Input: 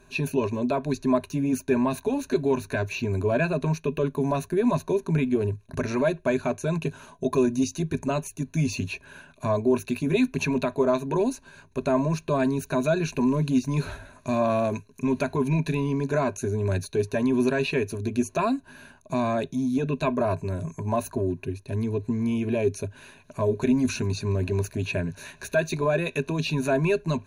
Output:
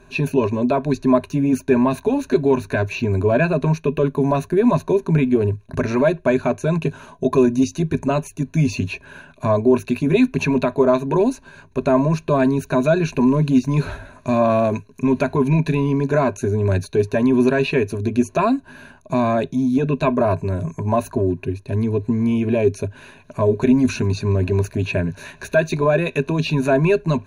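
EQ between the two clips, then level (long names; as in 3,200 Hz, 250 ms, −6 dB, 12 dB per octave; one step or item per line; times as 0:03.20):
high-shelf EQ 4,200 Hz −8.5 dB
+7.0 dB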